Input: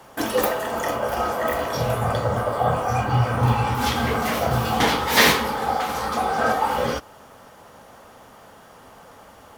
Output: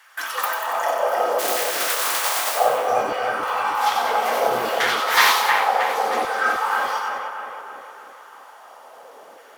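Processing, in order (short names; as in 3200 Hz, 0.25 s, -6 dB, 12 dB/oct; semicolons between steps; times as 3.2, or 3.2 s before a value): 1.38–2.55 spectral contrast lowered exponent 0.19; LFO high-pass saw down 0.64 Hz 350–1800 Hz; on a send: split-band echo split 2900 Hz, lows 0.312 s, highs 94 ms, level -4 dB; on the sum: gain -2.5 dB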